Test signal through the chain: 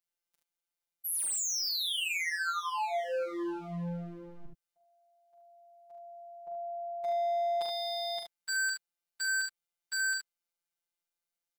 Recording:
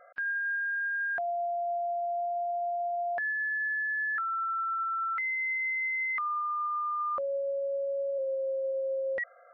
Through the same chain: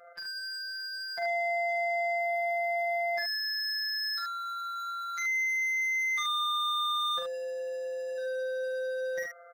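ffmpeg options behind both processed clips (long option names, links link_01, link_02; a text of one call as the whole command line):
ffmpeg -i in.wav -af "aeval=exprs='0.0237*(abs(mod(val(0)/0.0237+3,4)-2)-1)':channel_layout=same,afftfilt=real='hypot(re,im)*cos(PI*b)':imag='0':win_size=1024:overlap=0.75,aecho=1:1:42|73:0.562|0.562,volume=4dB" out.wav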